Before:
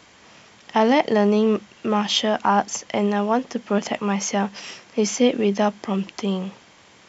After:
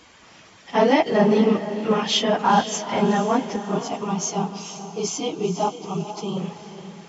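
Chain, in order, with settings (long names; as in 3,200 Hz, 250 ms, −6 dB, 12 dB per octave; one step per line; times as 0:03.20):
random phases in long frames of 50 ms
0:03.56–0:06.37: phaser with its sweep stopped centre 360 Hz, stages 8
feedback delay with all-pass diffusion 467 ms, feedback 40%, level −11 dB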